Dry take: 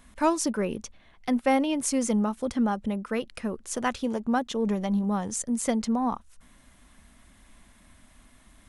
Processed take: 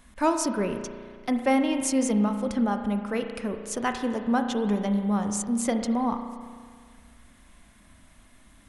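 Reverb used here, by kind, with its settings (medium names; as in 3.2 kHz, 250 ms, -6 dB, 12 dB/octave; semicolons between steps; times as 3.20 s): spring tank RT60 1.9 s, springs 34 ms, chirp 55 ms, DRR 6 dB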